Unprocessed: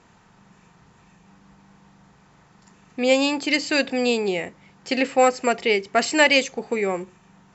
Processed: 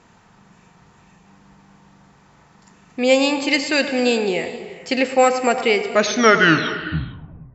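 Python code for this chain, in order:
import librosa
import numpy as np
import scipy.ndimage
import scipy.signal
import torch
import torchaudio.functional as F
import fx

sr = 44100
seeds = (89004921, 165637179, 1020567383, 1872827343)

y = fx.tape_stop_end(x, sr, length_s=1.72)
y = fx.echo_banded(y, sr, ms=105, feedback_pct=48, hz=790.0, wet_db=-9.5)
y = fx.rev_gated(y, sr, seeds[0], gate_ms=480, shape='flat', drr_db=11.0)
y = y * librosa.db_to_amplitude(2.5)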